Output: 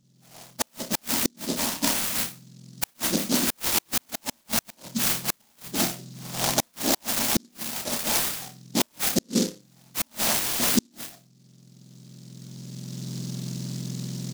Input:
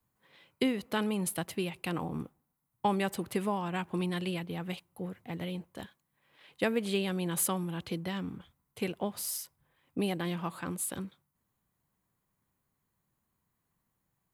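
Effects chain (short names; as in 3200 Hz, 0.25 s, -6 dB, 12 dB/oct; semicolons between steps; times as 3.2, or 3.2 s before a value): spectrum mirrored in octaves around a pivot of 1600 Hz; recorder AGC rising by 13 dB/s; notches 50/100/150/200/250/300 Hz; doubler 31 ms -11 dB; flutter echo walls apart 5 m, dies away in 0.29 s; flipped gate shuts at -16 dBFS, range -41 dB; bell 5900 Hz -9.5 dB 0.87 oct; stuck buffer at 10.41, samples 1024, times 7; noise-modulated delay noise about 5200 Hz, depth 0.24 ms; gain +8 dB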